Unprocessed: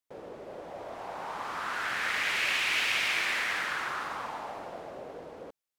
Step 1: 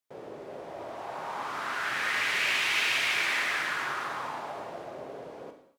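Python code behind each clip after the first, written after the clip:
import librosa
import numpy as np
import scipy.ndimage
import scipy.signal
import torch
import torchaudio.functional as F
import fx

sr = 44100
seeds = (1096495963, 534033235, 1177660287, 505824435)

y = scipy.signal.sosfilt(scipy.signal.butter(2, 76.0, 'highpass', fs=sr, output='sos'), x)
y = fx.rev_gated(y, sr, seeds[0], gate_ms=280, shape='falling', drr_db=4.0)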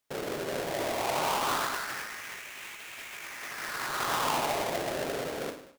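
y = fx.halfwave_hold(x, sr)
y = fx.over_compress(y, sr, threshold_db=-32.0, ratio=-0.5)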